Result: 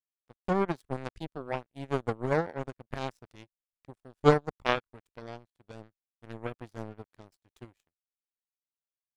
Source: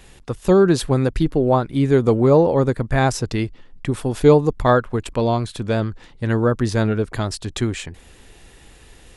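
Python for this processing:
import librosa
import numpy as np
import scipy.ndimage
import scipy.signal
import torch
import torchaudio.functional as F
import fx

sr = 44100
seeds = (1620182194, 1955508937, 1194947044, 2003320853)

y = fx.power_curve(x, sr, exponent=3.0)
y = F.gain(torch.from_numpy(y), -2.0).numpy()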